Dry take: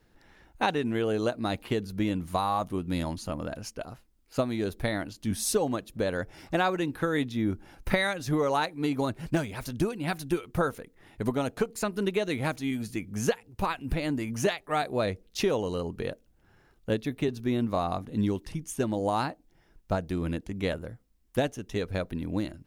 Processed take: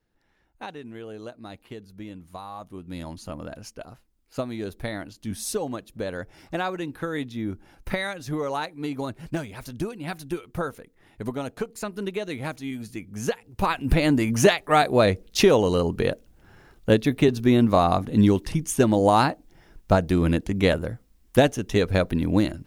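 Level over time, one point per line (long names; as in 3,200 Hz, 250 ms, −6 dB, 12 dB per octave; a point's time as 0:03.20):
0:02.51 −11 dB
0:03.28 −2 dB
0:13.16 −2 dB
0:13.92 +9.5 dB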